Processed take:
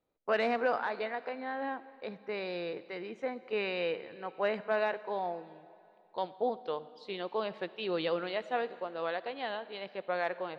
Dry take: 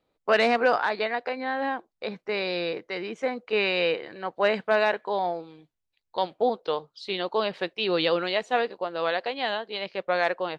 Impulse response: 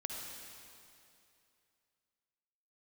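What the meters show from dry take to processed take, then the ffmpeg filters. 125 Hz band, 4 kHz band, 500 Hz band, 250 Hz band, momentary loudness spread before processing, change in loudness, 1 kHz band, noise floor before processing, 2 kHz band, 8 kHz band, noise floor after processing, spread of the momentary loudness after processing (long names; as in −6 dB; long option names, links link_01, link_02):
−7.5 dB, −12.5 dB, −7.5 dB, −7.5 dB, 9 LU, −8.5 dB, −8.0 dB, −81 dBFS, −9.5 dB, can't be measured, −61 dBFS, 10 LU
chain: -filter_complex "[0:a]highshelf=frequency=3800:gain=-11,asplit=2[link_01][link_02];[1:a]atrim=start_sample=2205[link_03];[link_02][link_03]afir=irnorm=-1:irlink=0,volume=-12dB[link_04];[link_01][link_04]amix=inputs=2:normalize=0,volume=-9dB"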